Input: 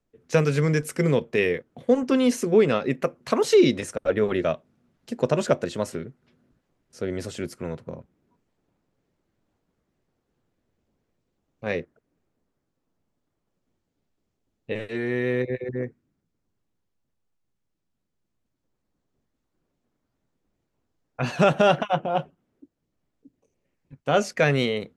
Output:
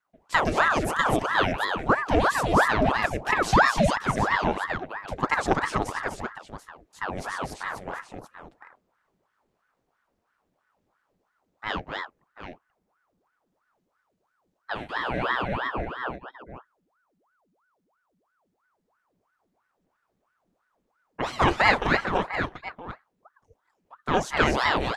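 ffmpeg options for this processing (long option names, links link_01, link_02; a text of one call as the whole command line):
ffmpeg -i in.wav -af "aecho=1:1:229|251|736:0.188|0.668|0.282,aeval=exprs='val(0)*sin(2*PI*840*n/s+840*0.8/3*sin(2*PI*3*n/s))':channel_layout=same" out.wav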